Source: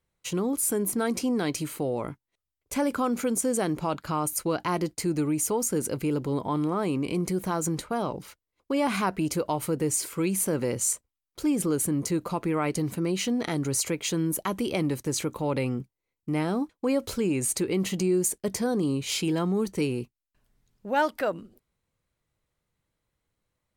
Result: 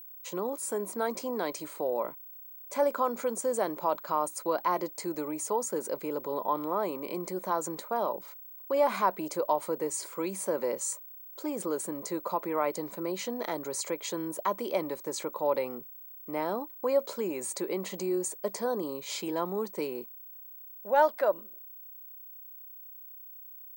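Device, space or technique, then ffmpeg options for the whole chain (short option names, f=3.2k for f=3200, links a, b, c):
old television with a line whistle: -af "highpass=f=230:w=0.5412,highpass=f=230:w=1.3066,equalizer=f=270:t=q:w=4:g=-9,equalizer=f=580:t=q:w=4:g=9,equalizer=f=980:t=q:w=4:g=9,equalizer=f=2.8k:t=q:w=4:g=-8,equalizer=f=5.6k:t=q:w=4:g=-4,lowpass=f=8.6k:w=0.5412,lowpass=f=8.6k:w=1.3066,aeval=exprs='val(0)+0.01*sin(2*PI*15734*n/s)':c=same,volume=-4.5dB"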